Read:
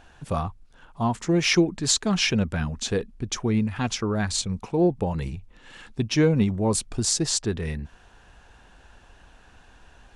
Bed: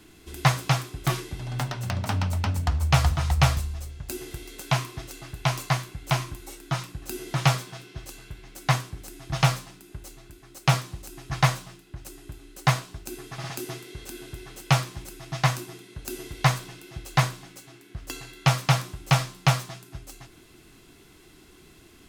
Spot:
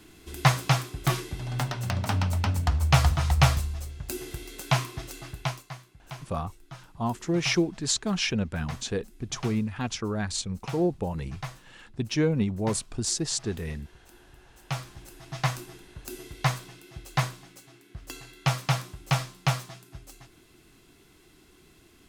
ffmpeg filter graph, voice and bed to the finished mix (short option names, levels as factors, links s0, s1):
-filter_complex "[0:a]adelay=6000,volume=0.596[s0];[1:a]volume=3.98,afade=t=out:st=5.27:d=0.36:silence=0.149624,afade=t=in:st=14.5:d=0.84:silence=0.251189[s1];[s0][s1]amix=inputs=2:normalize=0"